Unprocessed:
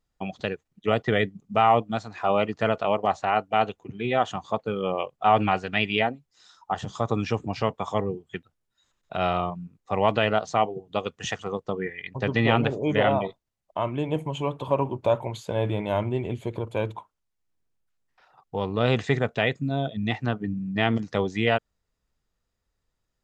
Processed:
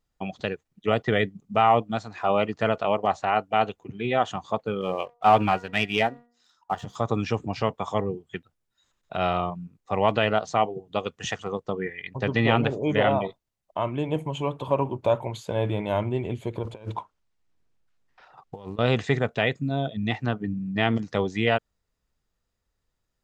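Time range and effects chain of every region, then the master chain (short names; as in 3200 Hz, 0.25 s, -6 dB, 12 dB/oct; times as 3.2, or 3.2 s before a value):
4.81–6.96 de-hum 238.8 Hz, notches 8 + sample leveller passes 1 + upward expander, over -30 dBFS
16.63–18.79 short-mantissa float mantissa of 4-bit + negative-ratio compressor -34 dBFS, ratio -0.5 + air absorption 63 m
whole clip: dry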